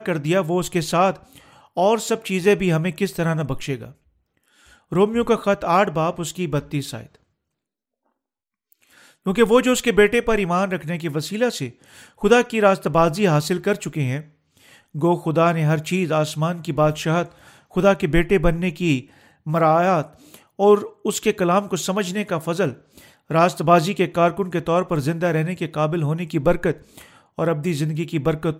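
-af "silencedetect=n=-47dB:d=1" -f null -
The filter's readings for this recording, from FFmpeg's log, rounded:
silence_start: 7.16
silence_end: 8.72 | silence_duration: 1.57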